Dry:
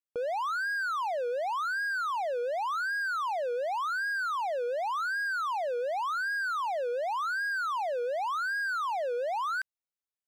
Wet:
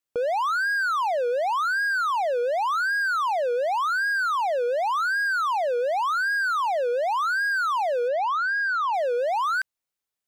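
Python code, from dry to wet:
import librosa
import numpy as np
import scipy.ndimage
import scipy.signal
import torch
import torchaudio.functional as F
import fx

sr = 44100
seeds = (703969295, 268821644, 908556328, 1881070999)

y = fx.gaussian_blur(x, sr, sigma=1.6, at=(8.08, 8.94))
y = y * 10.0 ** (7.0 / 20.0)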